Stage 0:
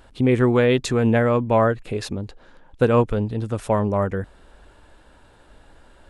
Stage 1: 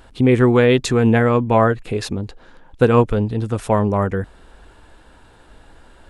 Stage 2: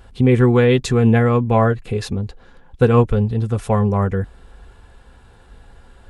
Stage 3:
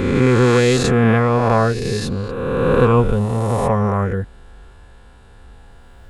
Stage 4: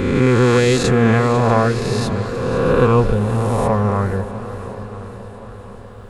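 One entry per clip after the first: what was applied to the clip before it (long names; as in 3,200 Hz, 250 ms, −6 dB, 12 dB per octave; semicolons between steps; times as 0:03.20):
notch filter 580 Hz, Q 12; level +4 dB
low-shelf EQ 110 Hz +9 dB; notch comb filter 310 Hz; level −1 dB
peak hold with a rise ahead of every peak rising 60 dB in 2.07 s; level −2 dB
feedback echo with a long and a short gap by turns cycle 1,069 ms, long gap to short 1.5 to 1, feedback 44%, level −17 dB; feedback echo with a swinging delay time 500 ms, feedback 60%, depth 73 cents, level −14 dB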